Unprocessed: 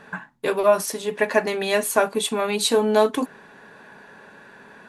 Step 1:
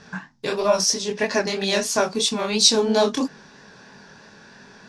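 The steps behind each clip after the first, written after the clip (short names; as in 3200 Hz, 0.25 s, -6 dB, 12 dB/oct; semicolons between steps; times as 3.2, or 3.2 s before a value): chorus 3 Hz, delay 20 ms, depth 6.4 ms; synth low-pass 5400 Hz, resonance Q 5.1; tone controls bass +9 dB, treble +8 dB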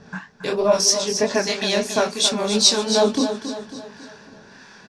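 harmonic tremolo 1.6 Hz, depth 70%, crossover 860 Hz; on a send: feedback echo 0.274 s, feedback 47%, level -9.5 dB; on the sum: gain +4 dB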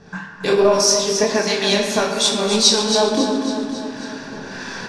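recorder AGC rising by 8.8 dB/s; on a send at -2 dB: reverb RT60 1.6 s, pre-delay 3 ms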